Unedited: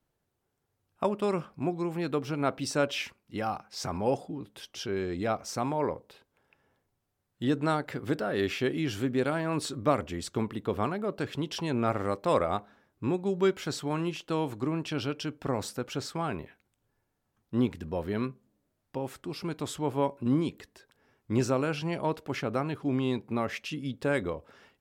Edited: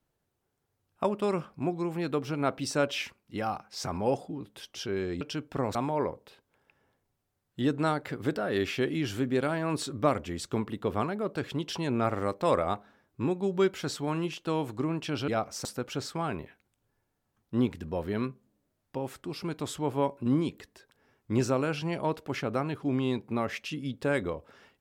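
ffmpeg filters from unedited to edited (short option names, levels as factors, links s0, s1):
-filter_complex "[0:a]asplit=5[s0][s1][s2][s3][s4];[s0]atrim=end=5.212[s5];[s1]atrim=start=15.108:end=15.652[s6];[s2]atrim=start=5.578:end=15.112[s7];[s3]atrim=start=5.208:end=5.582[s8];[s4]atrim=start=15.648[s9];[s5][s6]acrossfade=d=0.004:c1=hsin:c2=hsin[s10];[s10][s7]acrossfade=d=0.004:c1=hsin:c2=hsin[s11];[s11][s8]acrossfade=d=0.004:c1=hsin:c2=hsin[s12];[s12][s9]acrossfade=d=0.004:c1=hsin:c2=hsin"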